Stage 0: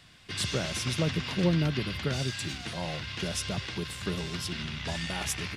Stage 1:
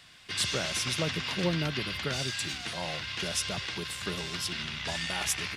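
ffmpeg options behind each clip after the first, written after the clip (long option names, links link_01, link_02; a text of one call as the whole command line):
ffmpeg -i in.wav -af "lowshelf=frequency=460:gain=-9.5,volume=3dB" out.wav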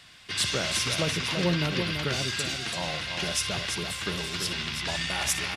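ffmpeg -i in.wav -af "aecho=1:1:58|336:0.2|0.473,aresample=32000,aresample=44100,volume=2.5dB" out.wav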